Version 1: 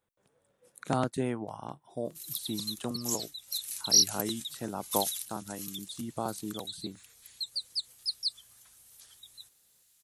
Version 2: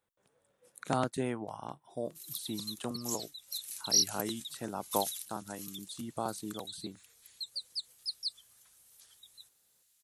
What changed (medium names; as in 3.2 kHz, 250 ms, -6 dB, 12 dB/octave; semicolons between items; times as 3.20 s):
background -4.5 dB; master: add bass shelf 430 Hz -4 dB